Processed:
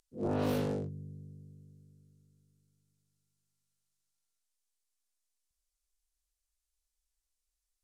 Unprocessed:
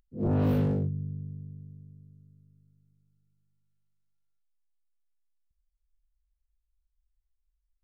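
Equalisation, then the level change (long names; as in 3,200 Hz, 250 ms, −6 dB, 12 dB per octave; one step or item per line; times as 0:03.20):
low-pass filter 10,000 Hz 12 dB per octave
bass and treble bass −12 dB, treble +14 dB
0.0 dB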